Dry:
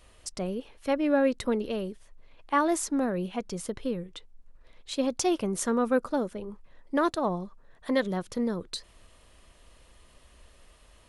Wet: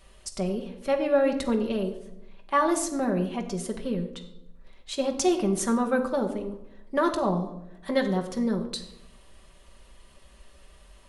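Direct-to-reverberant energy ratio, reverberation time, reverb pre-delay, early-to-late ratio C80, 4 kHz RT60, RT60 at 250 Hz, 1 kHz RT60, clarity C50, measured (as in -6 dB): 2.5 dB, 0.85 s, 5 ms, 12.0 dB, 0.55 s, 1.1 s, 0.70 s, 10.0 dB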